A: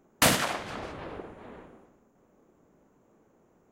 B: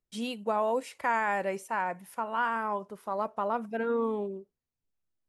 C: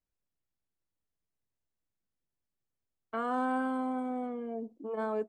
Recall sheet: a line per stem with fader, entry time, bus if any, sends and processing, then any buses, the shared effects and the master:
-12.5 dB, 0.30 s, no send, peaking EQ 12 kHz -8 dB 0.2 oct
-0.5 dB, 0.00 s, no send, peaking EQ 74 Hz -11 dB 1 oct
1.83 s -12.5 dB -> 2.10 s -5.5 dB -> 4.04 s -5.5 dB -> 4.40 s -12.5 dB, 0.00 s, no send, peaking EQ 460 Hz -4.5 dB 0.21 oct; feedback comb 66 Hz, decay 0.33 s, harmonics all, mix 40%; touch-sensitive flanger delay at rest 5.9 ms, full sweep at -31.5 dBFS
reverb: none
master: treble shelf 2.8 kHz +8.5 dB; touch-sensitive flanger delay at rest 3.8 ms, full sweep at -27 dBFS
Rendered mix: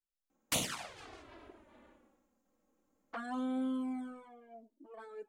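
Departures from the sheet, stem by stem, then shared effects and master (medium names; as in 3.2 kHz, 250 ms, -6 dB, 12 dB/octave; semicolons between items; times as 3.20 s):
stem B: muted; stem C -12.5 dB -> -4.5 dB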